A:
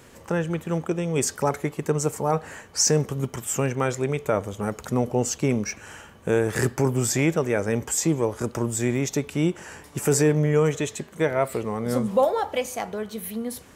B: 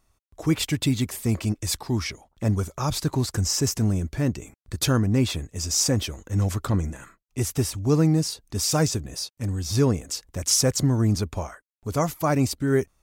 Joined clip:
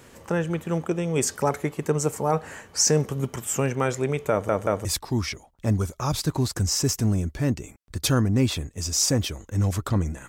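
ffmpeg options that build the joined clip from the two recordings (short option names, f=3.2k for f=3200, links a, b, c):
-filter_complex "[0:a]apad=whole_dur=10.28,atrim=end=10.28,asplit=3[a][b][c];[a]atrim=end=4.492[d];[b]atrim=start=4.308:end=4.492[e];[c]atrim=start=4.308:end=4.492[f];[1:a]atrim=start=1.628:end=7.06[g];[d][e]acrossfade=d=0.004:c1=hsin:c2=hsin[h];[h][f]acrossfade=d=0.004:c1=hsin:c2=hsin[i];[i][g]acrossfade=d=0.004:c1=hsin:c2=hsin"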